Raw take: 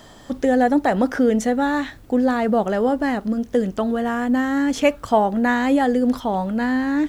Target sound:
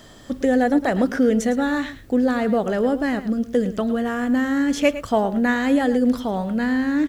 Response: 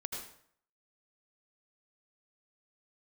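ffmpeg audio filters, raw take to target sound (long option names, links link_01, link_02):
-af "equalizer=frequency=870:width_type=o:width=0.68:gain=-6.5,aecho=1:1:109:0.211"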